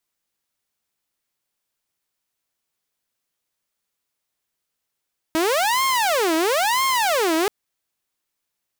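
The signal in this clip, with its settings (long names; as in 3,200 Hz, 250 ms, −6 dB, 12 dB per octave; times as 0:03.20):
siren wail 318–1,070 Hz 1 per second saw −15 dBFS 2.13 s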